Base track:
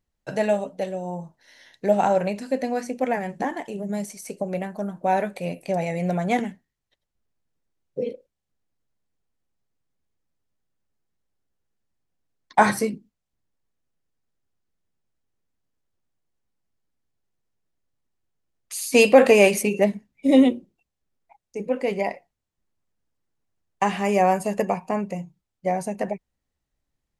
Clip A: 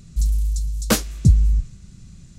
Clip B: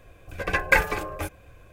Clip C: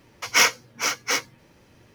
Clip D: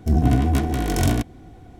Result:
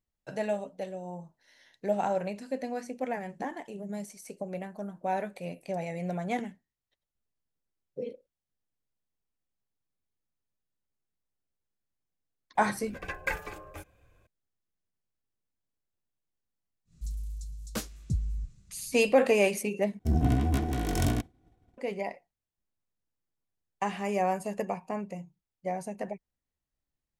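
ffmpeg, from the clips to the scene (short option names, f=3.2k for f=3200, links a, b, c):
-filter_complex "[0:a]volume=-9dB[a];[2:a]equalizer=f=7k:t=o:w=0.32:g=2.5[b];[4:a]agate=range=-33dB:threshold=-34dB:ratio=3:release=100:detection=peak[c];[a]asplit=2[d][e];[d]atrim=end=19.994[f];[c]atrim=end=1.79,asetpts=PTS-STARTPTS,volume=-7.5dB[g];[e]atrim=start=21.776[h];[b]atrim=end=1.72,asetpts=PTS-STARTPTS,volume=-13dB,afade=t=in:d=0.004:c=hsin,afade=t=out:st=1.716:d=0.004:c=hsin,adelay=12550[i];[1:a]atrim=end=2.38,asetpts=PTS-STARTPTS,volume=-16.5dB,afade=t=in:d=0.1,afade=t=out:st=2.28:d=0.1,adelay=16850[j];[f][g]acrossfade=d=0.004:c1=hsin:c2=hsin[k];[k][h]acrossfade=d=0.004:c1=hsin:c2=hsin[l];[l][i][j]amix=inputs=3:normalize=0"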